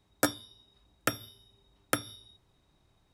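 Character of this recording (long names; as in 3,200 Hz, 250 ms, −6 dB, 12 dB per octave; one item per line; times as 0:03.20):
background noise floor −70 dBFS
spectral slope −3.0 dB per octave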